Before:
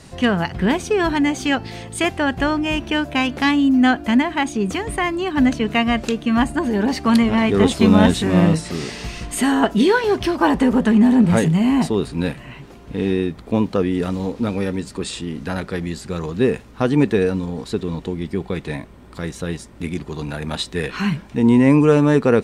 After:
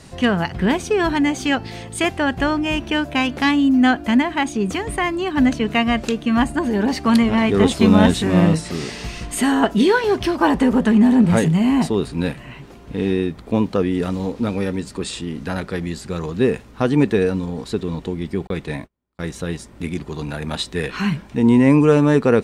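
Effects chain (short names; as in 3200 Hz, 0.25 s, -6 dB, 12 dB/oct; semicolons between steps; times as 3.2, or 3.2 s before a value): 18.47–19.28 gate -31 dBFS, range -38 dB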